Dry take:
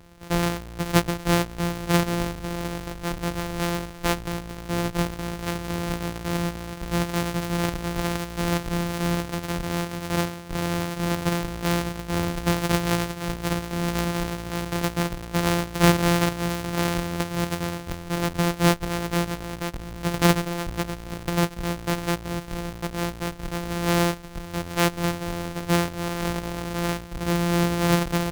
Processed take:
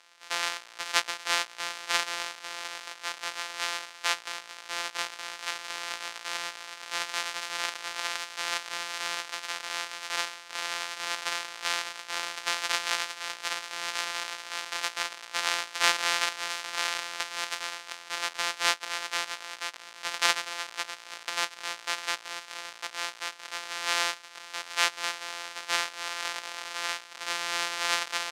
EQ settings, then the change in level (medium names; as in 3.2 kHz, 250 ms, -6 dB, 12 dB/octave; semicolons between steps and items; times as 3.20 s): high-pass 1 kHz 12 dB/octave; low-pass 5.9 kHz 12 dB/octave; tilt EQ +2.5 dB/octave; -1.5 dB